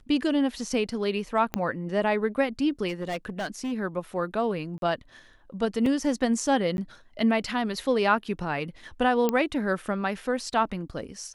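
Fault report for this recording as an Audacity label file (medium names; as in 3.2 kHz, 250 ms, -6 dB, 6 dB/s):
1.540000	1.540000	pop -12 dBFS
2.880000	3.730000	clipped -26.5 dBFS
4.780000	4.820000	dropout 42 ms
5.860000	5.860000	dropout 2.5 ms
6.770000	6.780000	dropout 11 ms
9.290000	9.290000	pop -11 dBFS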